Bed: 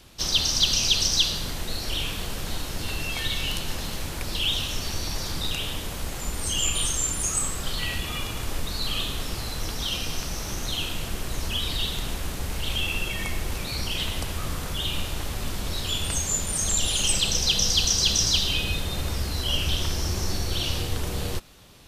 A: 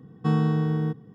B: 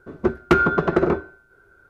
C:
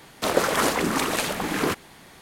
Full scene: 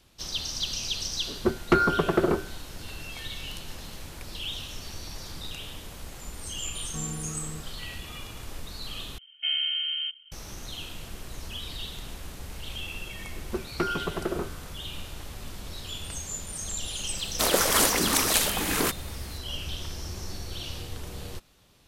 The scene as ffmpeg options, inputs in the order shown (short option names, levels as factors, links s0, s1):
-filter_complex "[2:a]asplit=2[s0][s1];[1:a]asplit=2[s2][s3];[0:a]volume=0.335[s4];[s3]lowpass=f=2800:t=q:w=0.5098,lowpass=f=2800:t=q:w=0.6013,lowpass=f=2800:t=q:w=0.9,lowpass=f=2800:t=q:w=2.563,afreqshift=-3300[s5];[3:a]crystalizer=i=2.5:c=0[s6];[s4]asplit=2[s7][s8];[s7]atrim=end=9.184[s9];[s5]atrim=end=1.14,asetpts=PTS-STARTPTS,volume=0.501[s10];[s8]atrim=start=10.316[s11];[s0]atrim=end=1.89,asetpts=PTS-STARTPTS,volume=0.596,afade=t=in:d=0.004:c=hsin,afade=t=out:st=1.886:d=0.004:c=hsin,adelay=1210[s12];[s2]atrim=end=1.14,asetpts=PTS-STARTPTS,volume=0.188,afade=t=in:d=0.004:c=hsin,afade=t=out:st=1.136:d=0.004:c=hsin,adelay=6690[s13];[s1]atrim=end=1.89,asetpts=PTS-STARTPTS,volume=0.251,afade=t=in:d=0.004:c=hsin,afade=t=out:st=1.886:d=0.004:c=hsin,adelay=13290[s14];[s6]atrim=end=2.21,asetpts=PTS-STARTPTS,volume=0.631,afade=t=in:d=0.004:c=hsin,afade=t=out:st=2.206:d=0.004:c=hsin,adelay=17170[s15];[s9][s10]acrossfade=d=0.004:c1=hsin:c2=hsin[s16];[s16][s11]acrossfade=d=0.004:c1=hsin:c2=hsin[s17];[s17][s12][s13][s14][s15]amix=inputs=5:normalize=0"